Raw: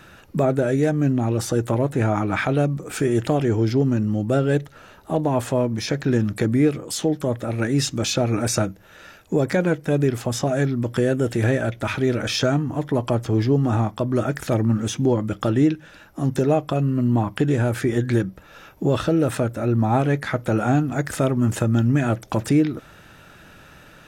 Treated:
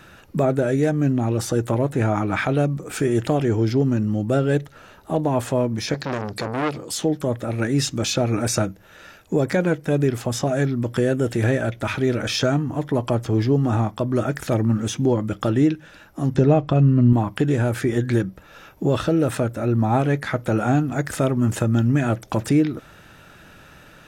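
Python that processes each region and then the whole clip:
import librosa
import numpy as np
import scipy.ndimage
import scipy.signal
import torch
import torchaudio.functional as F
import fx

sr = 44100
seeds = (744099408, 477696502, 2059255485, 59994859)

y = fx.chain(x, sr, fx.highpass(hz=64.0, slope=6),
    fx.peak_eq(hz=4600.0, db=13.0, octaves=0.45),
    fx.transformer_sat(knee_hz=1500.0), at=(5.94, 6.91))
y = fx.chain(y, sr, fx.lowpass(hz=5000.0, slope=12),
    fx.low_shelf(hz=180.0, db=10.5), at=(16.34, 17.13))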